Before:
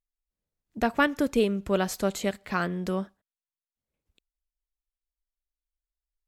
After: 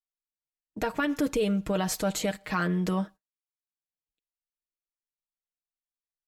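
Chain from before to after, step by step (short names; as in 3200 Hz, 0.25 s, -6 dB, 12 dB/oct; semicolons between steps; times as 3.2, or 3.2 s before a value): gate -46 dBFS, range -27 dB; comb 6.4 ms, depth 66%; limiter -20 dBFS, peak gain reduction 12 dB; gain +2 dB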